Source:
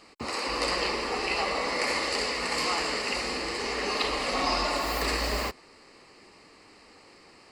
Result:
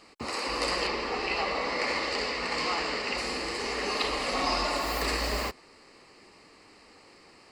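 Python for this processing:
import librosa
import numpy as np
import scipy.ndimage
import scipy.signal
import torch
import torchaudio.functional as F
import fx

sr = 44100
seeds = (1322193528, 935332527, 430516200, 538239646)

y = fx.lowpass(x, sr, hz=5400.0, slope=12, at=(0.87, 3.18))
y = y * librosa.db_to_amplitude(-1.0)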